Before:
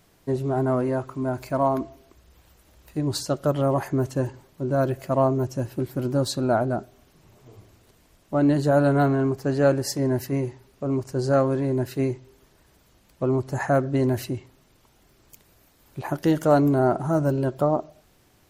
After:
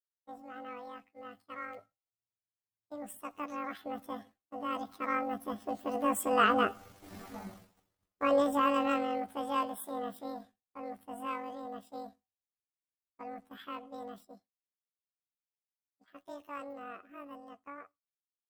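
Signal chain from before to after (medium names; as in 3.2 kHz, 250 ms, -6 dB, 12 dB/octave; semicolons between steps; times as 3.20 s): rotating-head pitch shifter +11.5 st; Doppler pass-by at 7.18 s, 6 m/s, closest 1.4 m; expander -56 dBFS; trim +8 dB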